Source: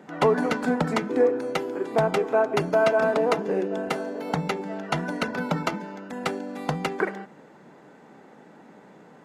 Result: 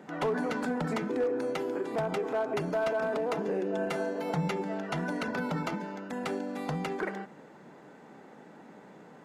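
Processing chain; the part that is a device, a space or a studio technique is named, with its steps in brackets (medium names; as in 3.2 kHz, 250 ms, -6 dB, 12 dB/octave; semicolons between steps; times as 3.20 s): clipper into limiter (hard clipper -14.5 dBFS, distortion -21 dB; peak limiter -22 dBFS, peak gain reduction 7.5 dB); 3.73–4.63 s: comb 5.8 ms, depth 49%; trim -1.5 dB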